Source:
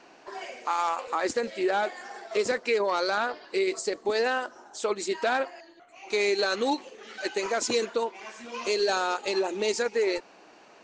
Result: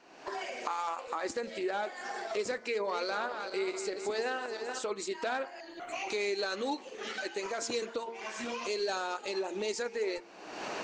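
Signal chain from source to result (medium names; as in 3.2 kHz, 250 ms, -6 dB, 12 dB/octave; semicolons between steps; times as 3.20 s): 2.64–4.83 s: backward echo that repeats 215 ms, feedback 54%, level -9 dB; recorder AGC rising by 49 dB/s; de-hum 114.8 Hz, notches 21; trim -7.5 dB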